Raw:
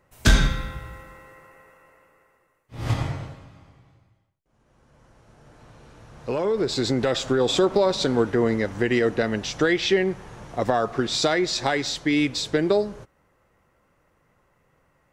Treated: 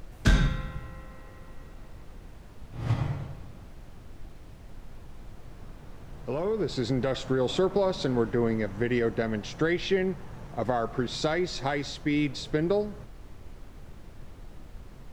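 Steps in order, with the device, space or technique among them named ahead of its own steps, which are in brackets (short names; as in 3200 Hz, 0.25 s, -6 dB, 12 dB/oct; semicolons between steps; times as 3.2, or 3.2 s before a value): car interior (bell 150 Hz +5.5 dB 0.76 oct; high shelf 3800 Hz -8 dB; brown noise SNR 12 dB); gain -5.5 dB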